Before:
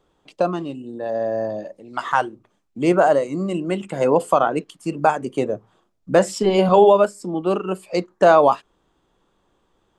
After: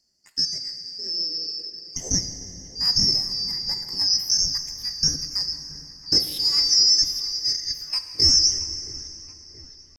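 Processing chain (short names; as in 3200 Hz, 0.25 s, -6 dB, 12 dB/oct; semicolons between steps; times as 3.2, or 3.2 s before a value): four-band scrambler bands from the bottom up 2413; EQ curve 190 Hz 0 dB, 780 Hz -11 dB, 4700 Hz -5 dB; pitch shift +7 st; dark delay 0.675 s, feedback 62%, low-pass 3000 Hz, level -16 dB; plate-style reverb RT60 3.6 s, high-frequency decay 0.75×, DRR 6.5 dB; gain +1 dB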